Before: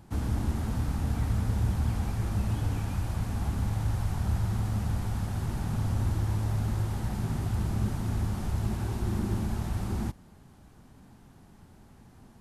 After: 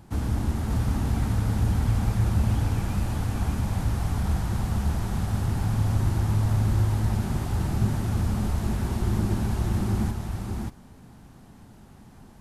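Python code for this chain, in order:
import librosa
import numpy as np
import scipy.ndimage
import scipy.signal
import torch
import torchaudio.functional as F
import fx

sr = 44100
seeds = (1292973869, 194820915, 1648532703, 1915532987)

y = x + 10.0 ** (-3.0 / 20.0) * np.pad(x, (int(585 * sr / 1000.0), 0))[:len(x)]
y = y * librosa.db_to_amplitude(3.0)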